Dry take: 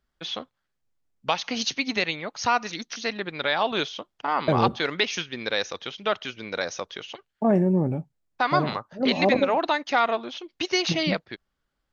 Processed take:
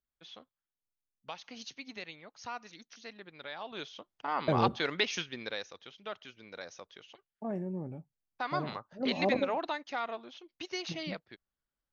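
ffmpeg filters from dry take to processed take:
ffmpeg -i in.wav -af "volume=2dB,afade=type=in:start_time=3.66:duration=0.93:silence=0.237137,afade=type=out:start_time=5.24:duration=0.42:silence=0.316228,afade=type=in:start_time=7.9:duration=1.43:silence=0.398107,afade=type=out:start_time=9.33:duration=0.57:silence=0.501187" out.wav

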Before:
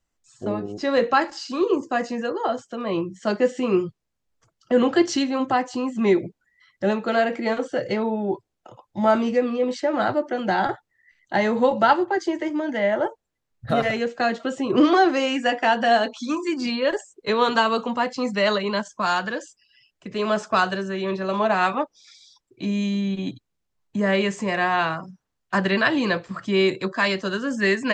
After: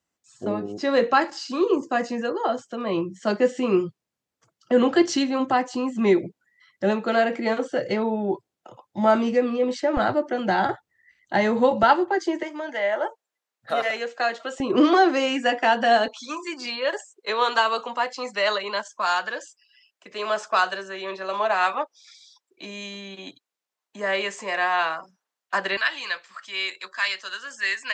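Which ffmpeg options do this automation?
ffmpeg -i in.wav -af "asetnsamples=nb_out_samples=441:pad=0,asendcmd='9.97 highpass f 49;11.83 highpass f 200;12.43 highpass f 570;14.6 highpass f 210;16.08 highpass f 570;25.77 highpass f 1500',highpass=130" out.wav

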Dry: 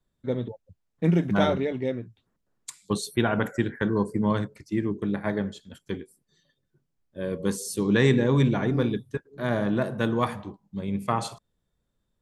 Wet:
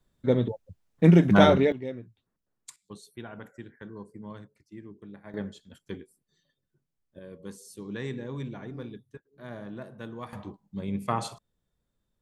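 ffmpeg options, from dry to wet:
ffmpeg -i in.wav -af "asetnsamples=nb_out_samples=441:pad=0,asendcmd='1.72 volume volume -7dB;2.76 volume volume -18dB;5.34 volume volume -6dB;7.19 volume volume -15dB;10.33 volume volume -2.5dB',volume=5dB" out.wav

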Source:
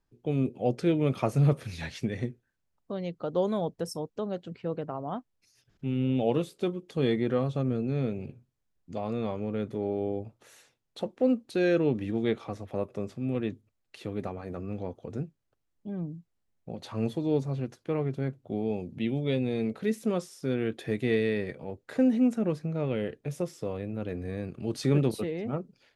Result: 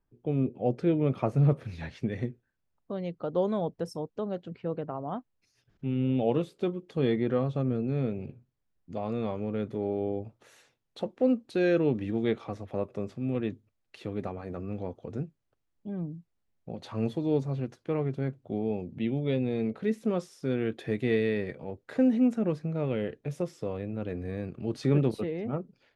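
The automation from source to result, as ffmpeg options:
ffmpeg -i in.wav -af "asetnsamples=nb_out_samples=441:pad=0,asendcmd='2.08 lowpass f 2800;9.01 lowpass f 4700;18.58 lowpass f 2500;20.18 lowpass f 4300;24.49 lowpass f 2600',lowpass=frequency=1400:poles=1" out.wav

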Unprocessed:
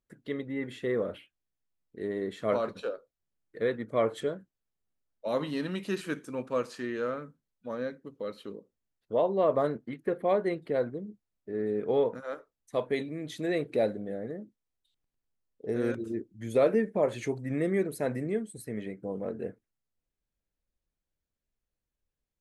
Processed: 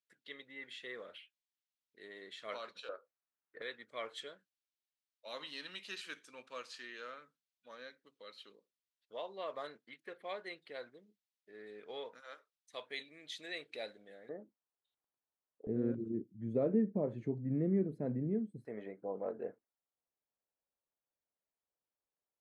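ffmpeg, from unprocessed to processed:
ffmpeg -i in.wav -af "asetnsamples=nb_out_samples=441:pad=0,asendcmd='2.89 bandpass f 1300;3.62 bandpass f 3700;14.29 bandpass f 870;15.67 bandpass f 180;18.65 bandpass f 800',bandpass=frequency=3600:width_type=q:width=1.2:csg=0" out.wav

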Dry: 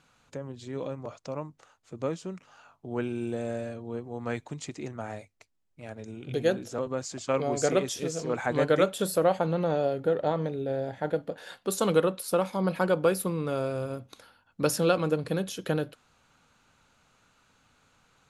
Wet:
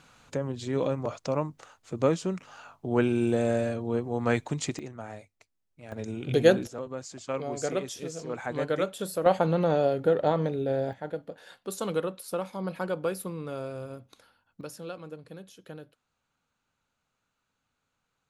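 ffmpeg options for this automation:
ffmpeg -i in.wav -af "asetnsamples=nb_out_samples=441:pad=0,asendcmd='4.79 volume volume -3.5dB;5.92 volume volume 6dB;6.67 volume volume -5dB;9.26 volume volume 2.5dB;10.93 volume volume -6dB;14.61 volume volume -15.5dB',volume=7dB" out.wav

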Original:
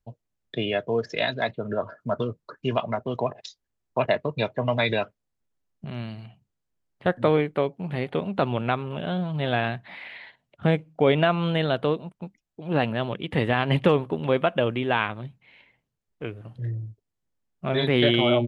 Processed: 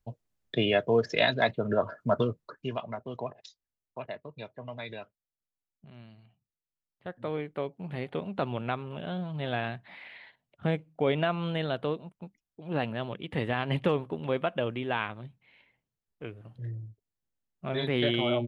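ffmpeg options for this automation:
ffmpeg -i in.wav -af "volume=10.5dB,afade=type=out:start_time=2.19:duration=0.54:silence=0.298538,afade=type=out:start_time=3.45:duration=0.6:silence=0.446684,afade=type=in:start_time=7.14:duration=0.71:silence=0.334965" out.wav

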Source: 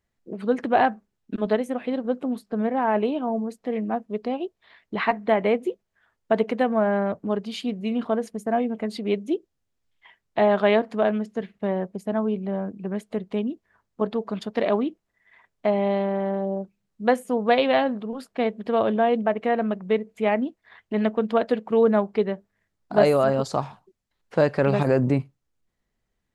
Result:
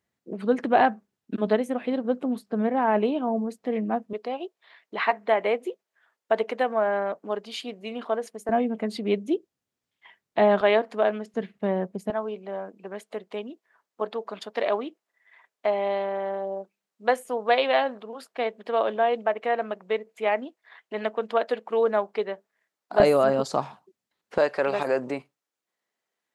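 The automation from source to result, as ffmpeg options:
ffmpeg -i in.wav -af "asetnsamples=nb_out_samples=441:pad=0,asendcmd='4.13 highpass f 450;8.49 highpass f 140;10.61 highpass f 350;11.34 highpass f 130;12.1 highpass f 490;23 highpass f 200;24.38 highpass f 490',highpass=120" out.wav

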